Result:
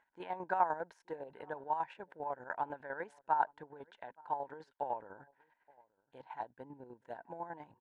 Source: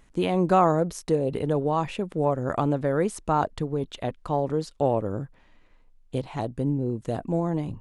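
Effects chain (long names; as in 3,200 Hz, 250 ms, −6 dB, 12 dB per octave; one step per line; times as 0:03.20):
pair of resonant band-passes 1,200 Hz, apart 0.74 octaves
square-wave tremolo 10 Hz, depth 60%, duty 35%
slap from a distant wall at 150 metres, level −26 dB
level +1 dB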